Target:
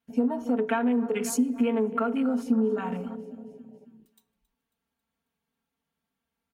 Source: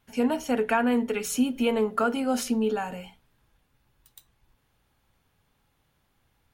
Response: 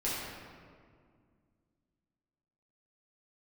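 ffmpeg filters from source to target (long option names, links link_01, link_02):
-filter_complex "[0:a]aecho=1:1:272|544|816|1088|1360:0.126|0.0743|0.0438|0.0259|0.0153,acompressor=threshold=-29dB:ratio=8,equalizer=frequency=250:width_type=o:width=0.77:gain=3.5,aecho=1:1:4.4:0.98,afwtdn=0.01,highpass=87,asplit=2[link_01][link_02];[1:a]atrim=start_sample=2205,afade=type=out:start_time=0.45:duration=0.01,atrim=end_sample=20286[link_03];[link_02][link_03]afir=irnorm=-1:irlink=0,volume=-25.5dB[link_04];[link_01][link_04]amix=inputs=2:normalize=0"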